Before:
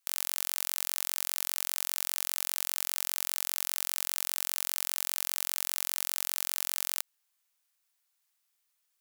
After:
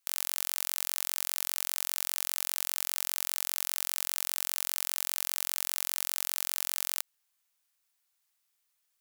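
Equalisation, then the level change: peaking EQ 71 Hz +15 dB 0.45 oct; 0.0 dB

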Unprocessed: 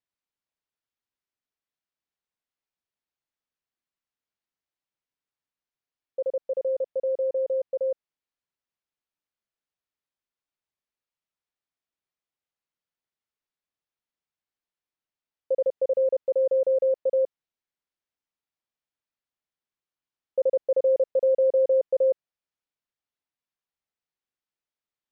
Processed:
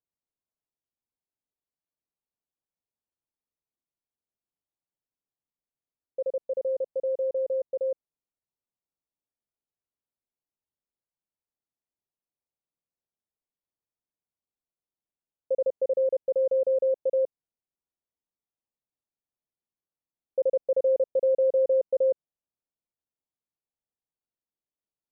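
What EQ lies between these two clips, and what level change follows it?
Bessel low-pass 700 Hz, order 8; 0.0 dB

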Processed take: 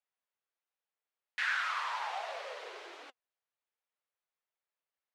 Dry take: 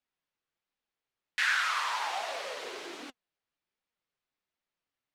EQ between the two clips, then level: high-pass 440 Hz 24 dB/octave; low-pass 2.6 kHz 6 dB/octave; -3.0 dB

